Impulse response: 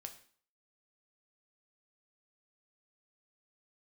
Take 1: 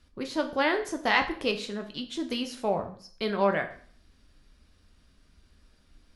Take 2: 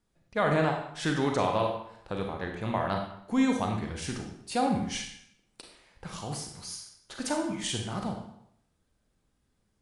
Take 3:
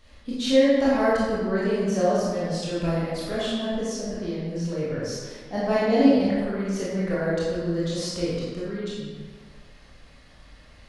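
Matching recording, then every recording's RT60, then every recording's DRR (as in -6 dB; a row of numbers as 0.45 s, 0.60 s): 1; 0.50 s, 0.70 s, 1.6 s; 5.0 dB, 2.0 dB, -9.0 dB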